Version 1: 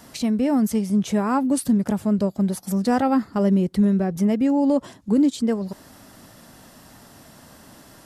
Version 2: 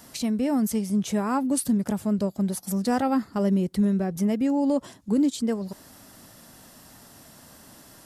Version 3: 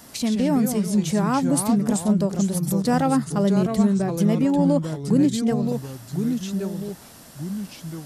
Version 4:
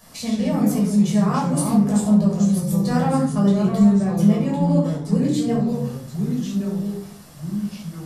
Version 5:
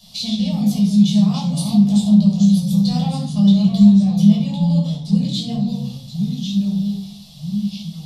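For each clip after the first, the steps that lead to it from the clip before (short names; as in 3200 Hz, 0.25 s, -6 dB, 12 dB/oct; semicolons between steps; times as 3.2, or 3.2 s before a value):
high shelf 4900 Hz +6.5 dB; gain -4 dB
echoes that change speed 86 ms, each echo -3 st, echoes 2, each echo -6 dB; gain +3 dB
shoebox room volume 640 m³, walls furnished, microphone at 5.8 m; gain -8.5 dB
EQ curve 140 Hz 0 dB, 200 Hz +6 dB, 320 Hz -22 dB, 740 Hz -4 dB, 1600 Hz -21 dB, 3600 Hz +15 dB, 7700 Hz -4 dB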